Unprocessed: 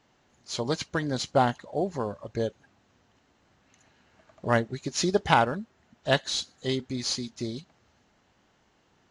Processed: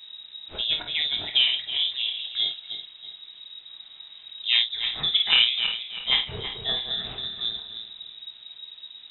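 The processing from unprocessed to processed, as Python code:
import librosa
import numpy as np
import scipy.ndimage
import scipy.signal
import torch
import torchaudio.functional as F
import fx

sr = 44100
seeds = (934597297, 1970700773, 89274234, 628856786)

y = fx.reverse_delay_fb(x, sr, ms=162, feedback_pct=56, wet_db=-8)
y = fx.env_lowpass_down(y, sr, base_hz=2200.0, full_db=-20.0)
y = fx.dmg_noise_colour(y, sr, seeds[0], colour='brown', level_db=-46.0)
y = fx.room_early_taps(y, sr, ms=(26, 52), db=(-7.5, -7.5))
y = fx.freq_invert(y, sr, carrier_hz=3800)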